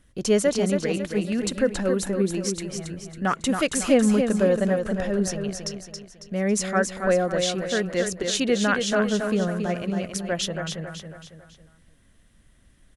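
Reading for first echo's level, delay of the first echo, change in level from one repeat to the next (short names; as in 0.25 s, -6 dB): -6.0 dB, 0.275 s, -7.0 dB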